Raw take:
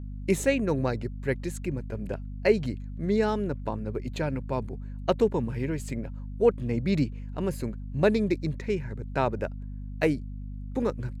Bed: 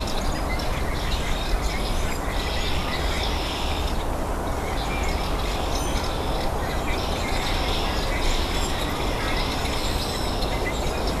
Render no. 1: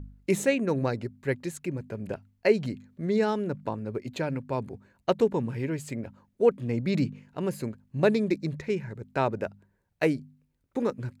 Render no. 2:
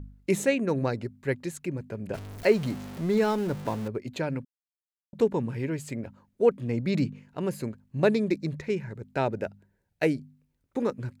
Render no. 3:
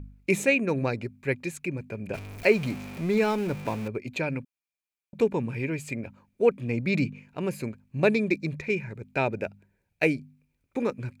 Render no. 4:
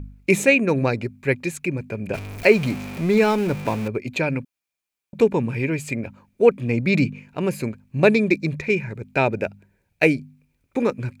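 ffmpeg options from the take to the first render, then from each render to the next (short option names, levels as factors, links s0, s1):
-af "bandreject=f=50:t=h:w=4,bandreject=f=100:t=h:w=4,bandreject=f=150:t=h:w=4,bandreject=f=200:t=h:w=4,bandreject=f=250:t=h:w=4"
-filter_complex "[0:a]asettb=1/sr,asplit=3[s0][s1][s2];[s0]atrim=end=2.144[s3];[s1]atrim=start=2.14:end=3.88,asetpts=PTS-STARTPTS,afade=t=in:d=0.004:c=qsin,afade=t=out:st=1.736:d=0.004:c=qsin,aeval=exprs='val(0)+0.5*0.0178*sgn(val(0))':c=same[s4];[s2]atrim=start=3.876[s5];[s3][s4]acrossfade=d=0.004:c1=hsin:c2=qsin[s6];[s6][s5]acrossfade=d=0.004:c1=qsin:c2=hsin,asettb=1/sr,asplit=3[s7][s8][s9];[s7]atrim=end=9.154[s10];[s8]atrim=start=9.15:end=10.16,asetpts=PTS-STARTPTS,afade=t=in:d=0.004:c=qsin,afade=t=out:st=1.006:d=0.004:c=qsin,equalizer=f=1100:w=5:g=-10[s11];[s9]atrim=start=10.156[s12];[s10][s11]acrossfade=d=0.004:c1=hsin:c2=qsin[s13];[s13][s12]acrossfade=d=0.004:c1=qsin:c2=hsin,asplit=3[s14][s15][s16];[s14]atrim=end=4.45,asetpts=PTS-STARTPTS,afade=t=out:st=4.446:d=0.004:c=hsin[s17];[s15]atrim=start=4.45:end=5.13,asetpts=PTS-STARTPTS,volume=0[s18];[s16]atrim=start=5.13,asetpts=PTS-STARTPTS,afade=t=in:d=0.004:c=hsin[s19];[s17][s18][s19]concat=n=3:v=0:a=1"
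-af "equalizer=f=2400:t=o:w=0.2:g=15"
-af "volume=2.11,alimiter=limit=0.891:level=0:latency=1"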